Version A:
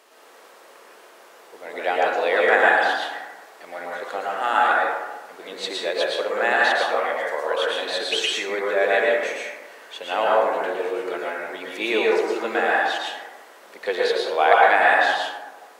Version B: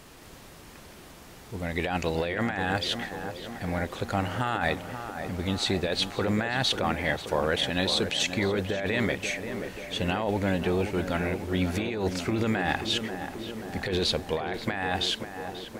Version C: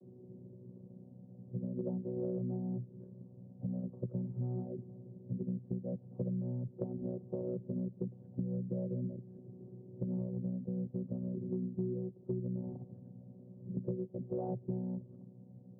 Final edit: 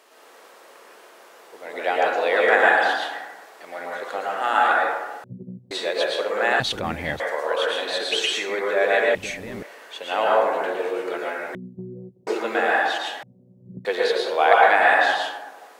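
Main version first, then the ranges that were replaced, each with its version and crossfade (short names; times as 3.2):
A
5.24–5.71 from C
6.6–7.2 from B
9.15–9.63 from B
11.55–12.27 from C
13.23–13.85 from C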